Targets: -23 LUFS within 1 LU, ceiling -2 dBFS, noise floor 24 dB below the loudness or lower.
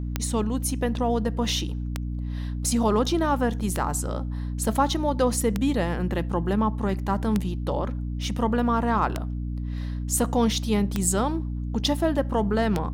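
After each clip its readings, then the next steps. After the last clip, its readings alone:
clicks found 8; hum 60 Hz; highest harmonic 300 Hz; hum level -27 dBFS; loudness -25.5 LUFS; peak level -8.5 dBFS; loudness target -23.0 LUFS
-> de-click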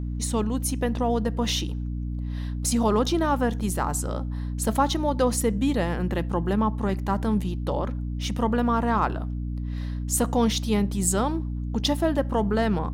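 clicks found 0; hum 60 Hz; highest harmonic 300 Hz; hum level -27 dBFS
-> hum notches 60/120/180/240/300 Hz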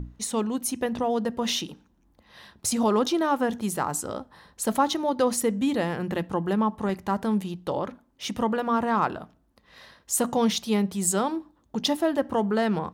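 hum not found; loudness -26.5 LUFS; peak level -10.5 dBFS; loudness target -23.0 LUFS
-> trim +3.5 dB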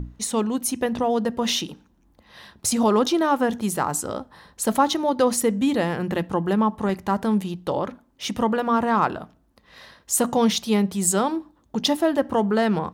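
loudness -23.0 LUFS; peak level -7.0 dBFS; noise floor -61 dBFS

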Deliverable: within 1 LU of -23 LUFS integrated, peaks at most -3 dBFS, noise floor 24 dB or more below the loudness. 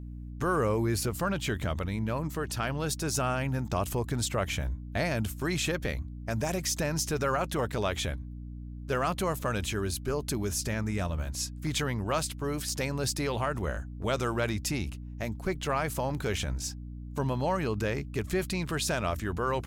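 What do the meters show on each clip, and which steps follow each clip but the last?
dropouts 1; longest dropout 2.9 ms; hum 60 Hz; highest harmonic 300 Hz; hum level -38 dBFS; loudness -31.0 LUFS; peak level -16.5 dBFS; loudness target -23.0 LUFS
-> interpolate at 12.69 s, 2.9 ms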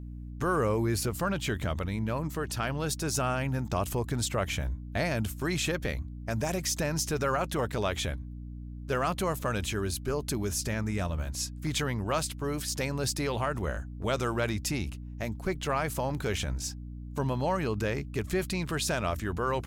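dropouts 0; hum 60 Hz; highest harmonic 300 Hz; hum level -38 dBFS
-> hum notches 60/120/180/240/300 Hz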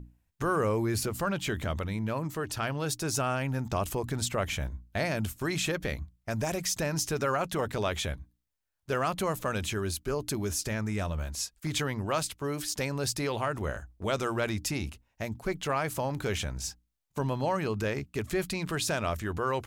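hum not found; loudness -31.5 LUFS; peak level -16.0 dBFS; loudness target -23.0 LUFS
-> trim +8.5 dB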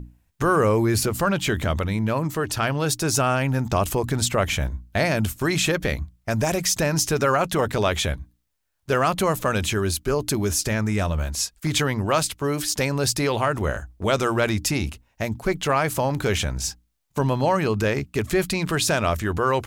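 loudness -23.0 LUFS; peak level -7.5 dBFS; noise floor -66 dBFS

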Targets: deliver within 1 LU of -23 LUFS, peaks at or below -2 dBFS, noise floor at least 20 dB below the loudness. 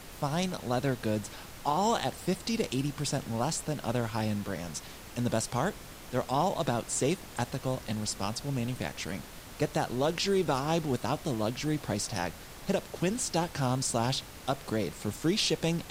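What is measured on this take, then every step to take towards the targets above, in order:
noise floor -47 dBFS; noise floor target -52 dBFS; loudness -31.5 LUFS; peak level -16.0 dBFS; loudness target -23.0 LUFS
-> noise print and reduce 6 dB; trim +8.5 dB

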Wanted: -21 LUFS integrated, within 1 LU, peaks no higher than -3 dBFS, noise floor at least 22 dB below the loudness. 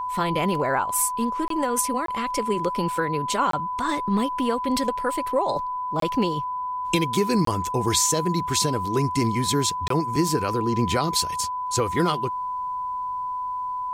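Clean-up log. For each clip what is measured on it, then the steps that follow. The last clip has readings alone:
dropouts 6; longest dropout 23 ms; steady tone 1 kHz; tone level -26 dBFS; loudness -24.0 LUFS; peak level -8.5 dBFS; loudness target -21.0 LUFS
-> interpolate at 1.48/2.06/3.51/6.00/7.45/9.88 s, 23 ms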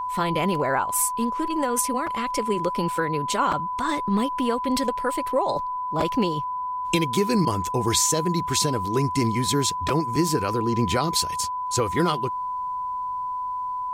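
dropouts 0; steady tone 1 kHz; tone level -26 dBFS
-> band-stop 1 kHz, Q 30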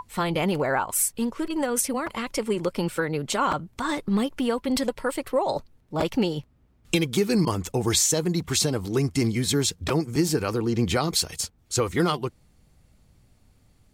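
steady tone not found; loudness -25.5 LUFS; peak level -9.0 dBFS; loudness target -21.0 LUFS
-> trim +4.5 dB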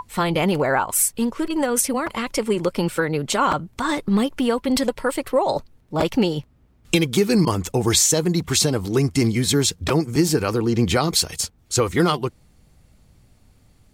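loudness -21.0 LUFS; peak level -4.5 dBFS; noise floor -57 dBFS

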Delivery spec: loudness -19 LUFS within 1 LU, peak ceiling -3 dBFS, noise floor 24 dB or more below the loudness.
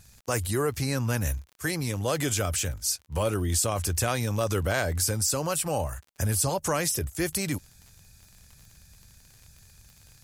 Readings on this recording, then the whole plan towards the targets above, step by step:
tick rate 50 per s; loudness -27.5 LUFS; peak level -12.0 dBFS; loudness target -19.0 LUFS
-> de-click; trim +8.5 dB

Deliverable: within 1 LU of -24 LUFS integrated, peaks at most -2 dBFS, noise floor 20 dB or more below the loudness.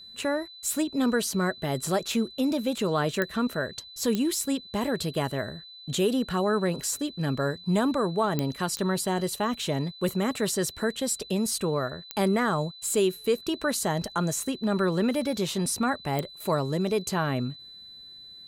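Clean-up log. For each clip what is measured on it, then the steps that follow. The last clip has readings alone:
clicks found 6; steady tone 4 kHz; tone level -44 dBFS; loudness -27.5 LUFS; peak level -11.0 dBFS; loudness target -24.0 LUFS
-> de-click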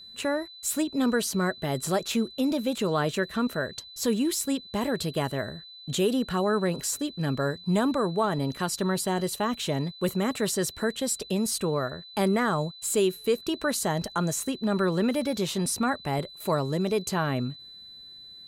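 clicks found 0; steady tone 4 kHz; tone level -44 dBFS
-> band-stop 4 kHz, Q 30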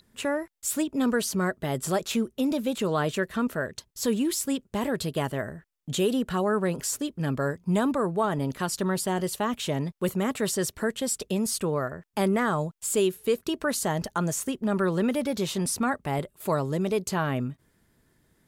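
steady tone not found; loudness -28.0 LUFS; peak level -14.0 dBFS; loudness target -24.0 LUFS
-> trim +4 dB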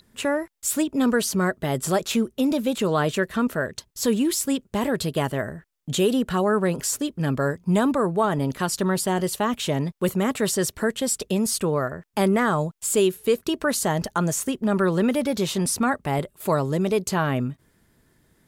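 loudness -24.0 LUFS; peak level -10.0 dBFS; noise floor -65 dBFS

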